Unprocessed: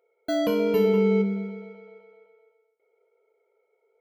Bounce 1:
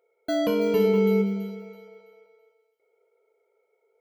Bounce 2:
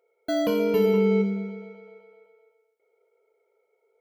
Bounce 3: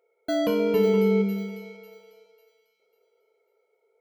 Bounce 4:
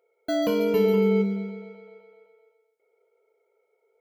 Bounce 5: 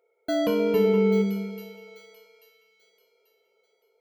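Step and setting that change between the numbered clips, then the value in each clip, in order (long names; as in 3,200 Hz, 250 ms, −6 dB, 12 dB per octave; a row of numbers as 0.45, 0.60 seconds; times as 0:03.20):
delay with a high-pass on its return, delay time: 330, 81, 547, 140, 838 milliseconds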